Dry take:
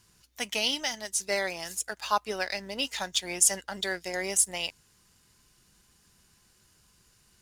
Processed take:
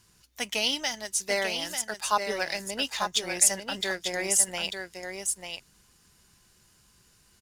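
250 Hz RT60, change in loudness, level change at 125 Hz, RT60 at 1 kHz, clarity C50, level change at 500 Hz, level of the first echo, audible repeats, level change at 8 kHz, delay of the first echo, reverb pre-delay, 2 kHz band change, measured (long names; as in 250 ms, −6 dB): no reverb audible, +1.5 dB, +2.0 dB, no reverb audible, no reverb audible, +2.0 dB, −6.5 dB, 1, +2.0 dB, 893 ms, no reverb audible, +2.0 dB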